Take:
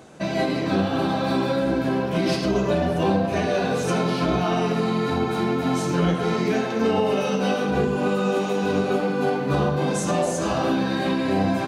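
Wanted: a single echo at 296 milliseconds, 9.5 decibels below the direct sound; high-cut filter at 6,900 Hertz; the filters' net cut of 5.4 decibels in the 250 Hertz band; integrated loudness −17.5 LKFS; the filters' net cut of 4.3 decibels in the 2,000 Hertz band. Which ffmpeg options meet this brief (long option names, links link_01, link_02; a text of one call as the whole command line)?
ffmpeg -i in.wav -af "lowpass=6900,equalizer=frequency=250:width_type=o:gain=-7.5,equalizer=frequency=2000:width_type=o:gain=-6,aecho=1:1:296:0.335,volume=8dB" out.wav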